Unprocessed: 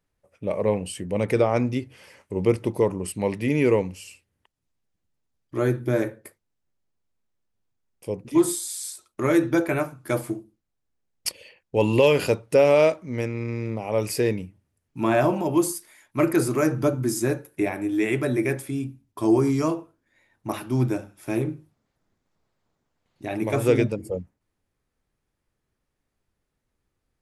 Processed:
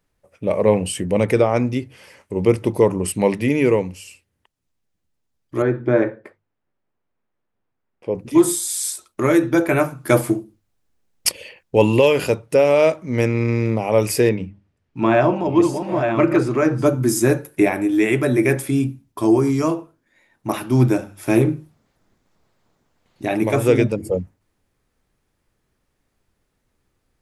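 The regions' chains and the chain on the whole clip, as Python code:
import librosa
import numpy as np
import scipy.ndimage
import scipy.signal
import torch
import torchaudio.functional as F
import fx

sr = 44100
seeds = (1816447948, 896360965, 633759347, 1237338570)

y = fx.chain(x, sr, fx.lowpass(hz=2000.0, slope=12),
    fx.low_shelf(hz=160.0, db=-9.5), at=(5.62, 8.15))
y = fx.chain(y, sr, fx.reverse_delay(ms=664, wet_db=-6.5),
    fx.lowpass(hz=4100.0, slope=12),
    fx.hum_notches(base_hz=50, count=6), at=(14.29, 16.86))
y = fx.hum_notches(y, sr, base_hz=50, count=3)
y = fx.dynamic_eq(y, sr, hz=4400.0, q=5.3, threshold_db=-53.0, ratio=4.0, max_db=-4)
y = fx.rider(y, sr, range_db=4, speed_s=0.5)
y = y * librosa.db_to_amplitude(6.0)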